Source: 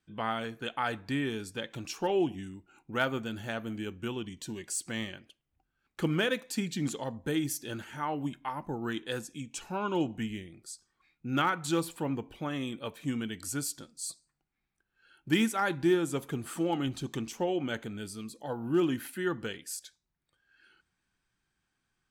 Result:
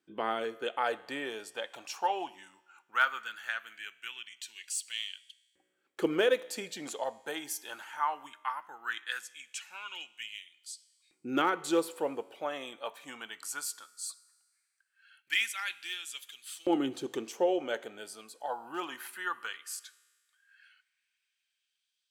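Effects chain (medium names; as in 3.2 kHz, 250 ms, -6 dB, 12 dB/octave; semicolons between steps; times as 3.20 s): bass shelf 88 Hz +9.5 dB; feedback comb 62 Hz, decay 1.6 s, harmonics all, mix 40%; LFO high-pass saw up 0.18 Hz 330–3800 Hz; trim +2.5 dB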